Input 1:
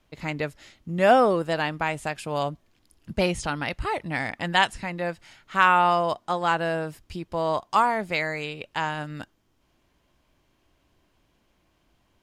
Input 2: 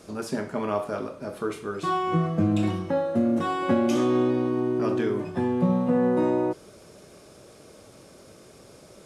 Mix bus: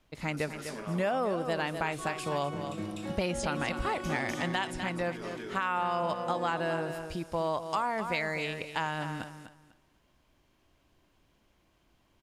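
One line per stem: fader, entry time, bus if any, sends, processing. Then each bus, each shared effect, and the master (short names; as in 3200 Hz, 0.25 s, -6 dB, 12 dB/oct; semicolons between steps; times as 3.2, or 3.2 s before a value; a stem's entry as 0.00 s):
-2.0 dB, 0.00 s, no send, echo send -11 dB, limiter -13 dBFS, peak gain reduction 8 dB
-4.0 dB, 0.15 s, no send, echo send -8 dB, tilt +2.5 dB/oct; auto duck -11 dB, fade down 0.35 s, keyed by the first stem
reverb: off
echo: feedback echo 0.249 s, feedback 23%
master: compressor 4:1, threshold -27 dBFS, peak gain reduction 7 dB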